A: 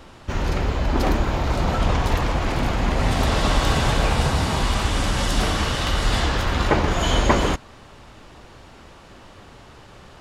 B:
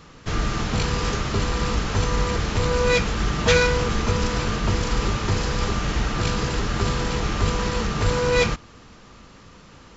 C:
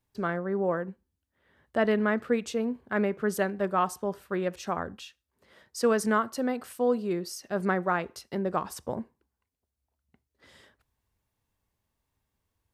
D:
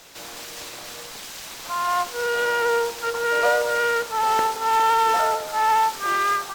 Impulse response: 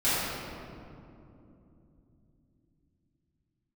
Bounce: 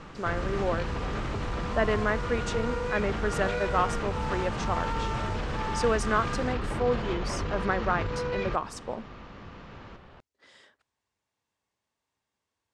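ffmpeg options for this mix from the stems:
-filter_complex "[0:a]volume=-6dB[link_01];[1:a]volume=1dB[link_02];[2:a]highpass=frequency=420:poles=1,volume=1dB[link_03];[3:a]volume=-16.5dB[link_04];[link_01][link_02]amix=inputs=2:normalize=0,lowpass=2800,alimiter=limit=-23.5dB:level=0:latency=1:release=116,volume=0dB[link_05];[link_03][link_04][link_05]amix=inputs=3:normalize=0,lowpass=frequency=8300:width=0.5412,lowpass=frequency=8300:width=1.3066"

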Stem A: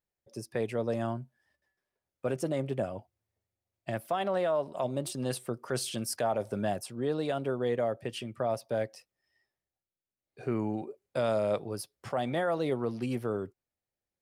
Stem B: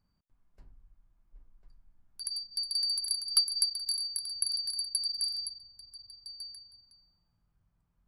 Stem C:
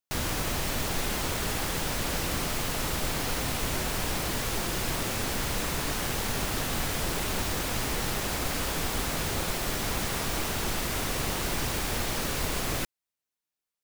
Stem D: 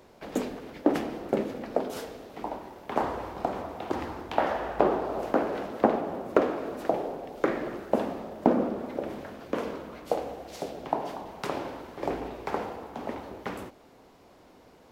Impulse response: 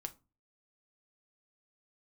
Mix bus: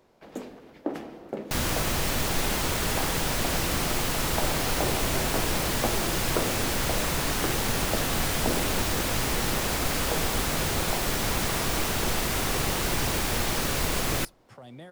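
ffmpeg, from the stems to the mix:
-filter_complex "[0:a]acrossover=split=270|3000[link_01][link_02][link_03];[link_02]acompressor=threshold=-38dB:ratio=6[link_04];[link_01][link_04][link_03]amix=inputs=3:normalize=0,adelay=2450,volume=-9dB[link_05];[2:a]adelay=1400,volume=2dB,asplit=2[link_06][link_07];[link_07]volume=-14.5dB[link_08];[3:a]volume=-9.5dB,asplit=2[link_09][link_10];[link_10]volume=-7.5dB[link_11];[4:a]atrim=start_sample=2205[link_12];[link_08][link_11]amix=inputs=2:normalize=0[link_13];[link_13][link_12]afir=irnorm=-1:irlink=0[link_14];[link_05][link_06][link_09][link_14]amix=inputs=4:normalize=0"

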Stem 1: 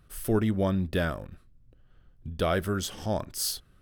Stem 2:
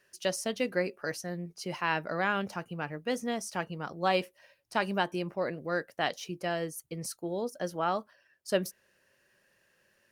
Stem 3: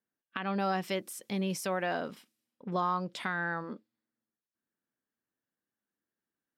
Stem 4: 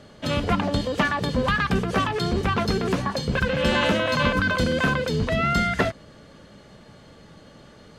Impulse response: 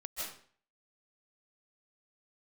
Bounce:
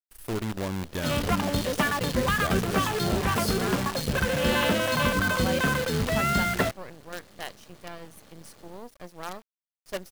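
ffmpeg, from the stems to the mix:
-filter_complex "[0:a]volume=-6dB[link_01];[1:a]adelay=1400,volume=-6.5dB[link_02];[2:a]adelay=2450,volume=-8dB[link_03];[3:a]adelay=800,volume=-3dB[link_04];[link_01][link_02][link_03][link_04]amix=inputs=4:normalize=0,acrusher=bits=6:dc=4:mix=0:aa=0.000001"

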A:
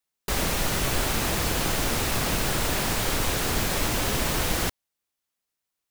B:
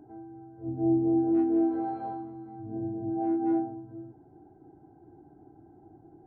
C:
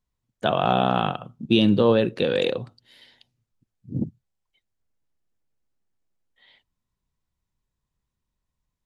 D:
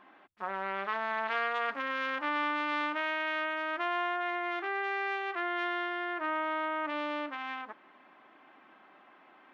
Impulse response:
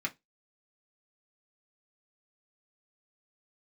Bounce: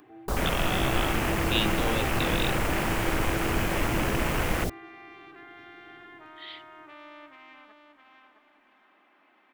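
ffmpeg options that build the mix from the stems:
-filter_complex "[0:a]afwtdn=0.0316,volume=0dB[link_01];[1:a]equalizer=frequency=500:width=0.88:gain=9.5,acompressor=threshold=-27dB:ratio=6,volume=-9dB,asplit=2[link_02][link_03];[link_03]volume=-4dB[link_04];[2:a]equalizer=frequency=2800:width=0.61:gain=12.5,dynaudnorm=framelen=270:gausssize=13:maxgain=16dB,volume=-15.5dB[link_05];[3:a]acompressor=mode=upward:threshold=-42dB:ratio=2.5,alimiter=level_in=2.5dB:limit=-24dB:level=0:latency=1,volume=-2.5dB,volume=-16dB,asplit=3[link_06][link_07][link_08];[link_07]volume=-8.5dB[link_09];[link_08]volume=-4dB[link_10];[4:a]atrim=start_sample=2205[link_11];[link_09][link_11]afir=irnorm=-1:irlink=0[link_12];[link_04][link_10]amix=inputs=2:normalize=0,aecho=0:1:663|1326|1989|2652:1|0.28|0.0784|0.022[link_13];[link_01][link_02][link_05][link_06][link_12][link_13]amix=inputs=6:normalize=0,highshelf=frequency=3600:gain=8"

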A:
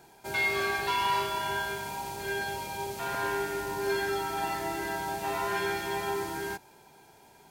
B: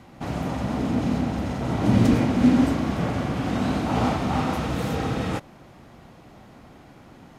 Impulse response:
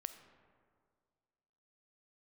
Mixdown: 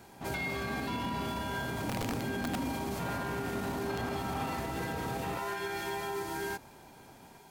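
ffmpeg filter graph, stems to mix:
-filter_complex "[0:a]alimiter=level_in=3.5dB:limit=-24dB:level=0:latency=1:release=144,volume=-3.5dB,volume=0.5dB[link_01];[1:a]bandreject=frequency=50:width_type=h:width=6,bandreject=frequency=100:width_type=h:width=6,bandreject=frequency=150:width_type=h:width=6,bandreject=frequency=200:width_type=h:width=6,bandreject=frequency=250:width_type=h:width=6,bandreject=frequency=300:width_type=h:width=6,bandreject=frequency=350:width_type=h:width=6,acrossover=split=5400[link_02][link_03];[link_03]acompressor=threshold=-55dB:ratio=4:attack=1:release=60[link_04];[link_02][link_04]amix=inputs=2:normalize=0,aeval=exprs='(mod(3.55*val(0)+1,2)-1)/3.55':channel_layout=same,volume=-9.5dB[link_05];[link_01][link_05]amix=inputs=2:normalize=0,alimiter=level_in=2.5dB:limit=-24dB:level=0:latency=1:release=40,volume=-2.5dB"

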